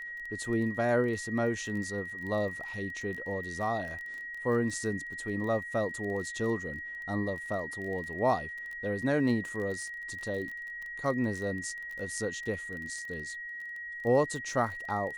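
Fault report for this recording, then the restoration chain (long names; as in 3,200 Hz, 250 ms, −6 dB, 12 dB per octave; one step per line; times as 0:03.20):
surface crackle 22 per second −38 dBFS
whistle 1,900 Hz −38 dBFS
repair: click removal
notch filter 1,900 Hz, Q 30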